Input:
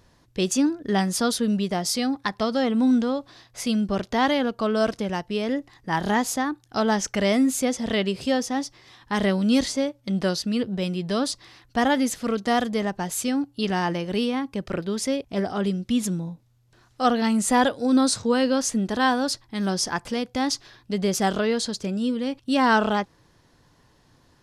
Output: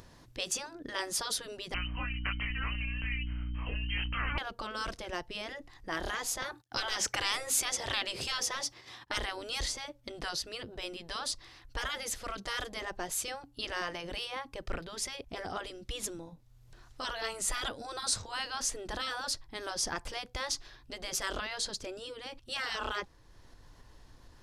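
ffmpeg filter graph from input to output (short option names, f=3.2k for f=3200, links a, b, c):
-filter_complex "[0:a]asettb=1/sr,asplit=3[a][b][c];[a]atrim=end=1.744[d];[b]atrim=start=1.74:end=4.38,asetpts=PTS-STARTPTS,afade=t=in:d=0.004:c=qsin,afade=t=out:st=2.636:d=0.004:c=qsin,lowpass=f=2.7k:t=q:w=0.5098,lowpass=f=2.7k:t=q:w=0.6013,lowpass=f=2.7k:t=q:w=0.9,lowpass=f=2.7k:t=q:w=2.563,afreqshift=-3200,asplit=2[e][f];[f]adelay=23,volume=-2.5dB[g];[e][g]amix=inputs=2:normalize=0,atrim=end_sample=116424,aeval=exprs='val(0)+0.0282*(sin(2*PI*60*n/s)+sin(2*PI*2*60*n/s)/2+sin(2*PI*3*60*n/s)/3+sin(2*PI*4*60*n/s)/4+sin(2*PI*5*60*n/s)/5)':c=same[h];[c]atrim=start=4.376[i];[d][h]acrossfade=d=0.004:c1=hsin:c2=qsin[j];[j][i]acrossfade=d=0.004:c1=qsin:c2=hsin,asettb=1/sr,asplit=3[k][l][m];[k]atrim=end=6.424[n];[l]atrim=start=6.42:end=9.18,asetpts=PTS-STARTPTS,afade=t=in:d=0.004:c=qsin,afade=t=out:st=2.756:d=0.004:c=qsin,agate=range=-22dB:threshold=-53dB:ratio=16:release=100:detection=peak,highpass=110,acontrast=66[o];[m]atrim=start=9.176[p];[n][o]acrossfade=d=0.004:c1=hsin:c2=qsin[q];[q][p]acrossfade=d=0.004:c1=qsin:c2=hsin,afftfilt=real='re*lt(hypot(re,im),0.251)':imag='im*lt(hypot(re,im),0.251)':win_size=1024:overlap=0.75,asubboost=boost=6:cutoff=58,acompressor=mode=upward:threshold=-42dB:ratio=2.5,volume=-5dB"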